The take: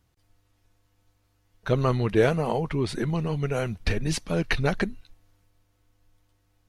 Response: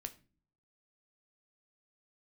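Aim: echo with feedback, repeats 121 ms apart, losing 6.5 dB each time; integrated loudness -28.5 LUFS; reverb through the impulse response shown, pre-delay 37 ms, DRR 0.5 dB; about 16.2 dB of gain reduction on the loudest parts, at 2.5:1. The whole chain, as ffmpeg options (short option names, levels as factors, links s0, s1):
-filter_complex "[0:a]acompressor=threshold=0.00891:ratio=2.5,aecho=1:1:121|242|363|484|605|726:0.473|0.222|0.105|0.0491|0.0231|0.0109,asplit=2[s0][s1];[1:a]atrim=start_sample=2205,adelay=37[s2];[s1][s2]afir=irnorm=-1:irlink=0,volume=1.41[s3];[s0][s3]amix=inputs=2:normalize=0,volume=2.11"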